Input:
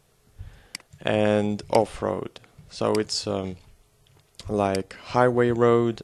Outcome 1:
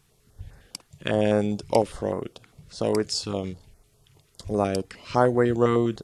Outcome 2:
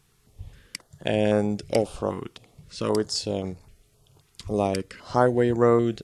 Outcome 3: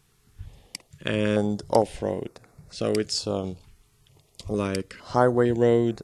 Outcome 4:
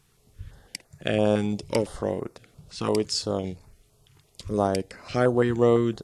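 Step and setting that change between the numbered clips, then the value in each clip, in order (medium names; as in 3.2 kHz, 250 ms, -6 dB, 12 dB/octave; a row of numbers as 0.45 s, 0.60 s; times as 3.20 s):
step-sequenced notch, rate: 9.9 Hz, 3.8 Hz, 2.2 Hz, 5.9 Hz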